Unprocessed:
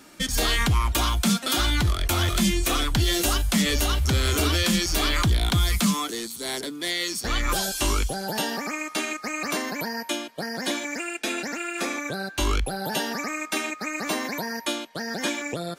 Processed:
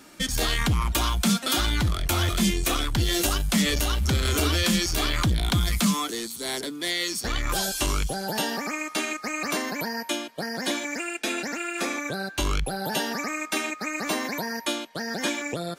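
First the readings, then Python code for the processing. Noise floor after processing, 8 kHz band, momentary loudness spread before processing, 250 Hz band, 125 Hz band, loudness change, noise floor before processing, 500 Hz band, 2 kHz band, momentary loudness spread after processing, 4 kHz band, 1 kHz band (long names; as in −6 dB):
−42 dBFS, −1.0 dB, 8 LU, −0.5 dB, −1.0 dB, −1.0 dB, −42 dBFS, −0.5 dB, −1.0 dB, 7 LU, −1.0 dB, −1.0 dB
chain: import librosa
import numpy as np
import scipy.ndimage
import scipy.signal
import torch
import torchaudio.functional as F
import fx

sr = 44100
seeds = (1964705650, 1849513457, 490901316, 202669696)

y = fx.transformer_sat(x, sr, knee_hz=150.0)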